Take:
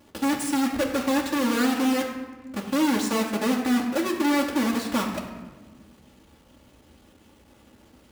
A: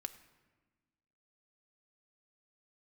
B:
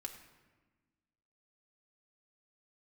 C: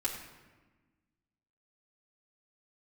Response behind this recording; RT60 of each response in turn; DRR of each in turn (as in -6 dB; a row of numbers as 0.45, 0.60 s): C; 1.3, 1.3, 1.3 s; 8.0, 1.5, -5.5 dB